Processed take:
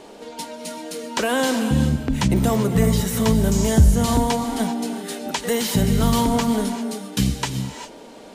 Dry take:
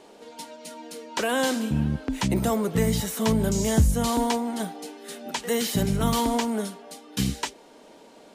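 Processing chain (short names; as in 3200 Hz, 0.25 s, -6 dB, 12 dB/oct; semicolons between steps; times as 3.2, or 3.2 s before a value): low shelf 130 Hz +7.5 dB; in parallel at +2 dB: compressor, threshold -31 dBFS, peak gain reduction 19.5 dB; on the sum: non-linear reverb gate 0.42 s rising, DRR 8 dB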